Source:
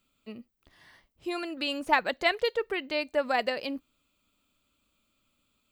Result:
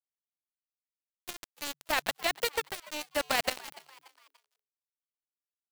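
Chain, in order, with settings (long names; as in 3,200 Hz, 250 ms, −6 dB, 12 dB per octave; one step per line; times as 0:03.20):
compressing power law on the bin magnitudes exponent 0.51
dynamic equaliser 660 Hz, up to +6 dB, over −46 dBFS, Q 3.4
centre clipping without the shift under −23.5 dBFS
output level in coarse steps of 9 dB
on a send: echo with shifted repeats 290 ms, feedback 43%, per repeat +140 Hz, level −20 dB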